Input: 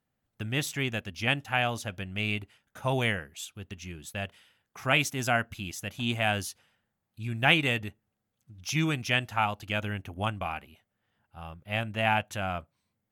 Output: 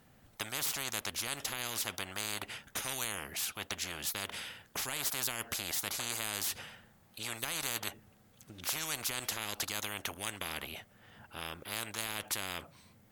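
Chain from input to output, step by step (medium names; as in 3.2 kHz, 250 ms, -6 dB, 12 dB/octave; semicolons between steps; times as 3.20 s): peak limiter -17.5 dBFS, peak gain reduction 10.5 dB; spectrum-flattening compressor 10:1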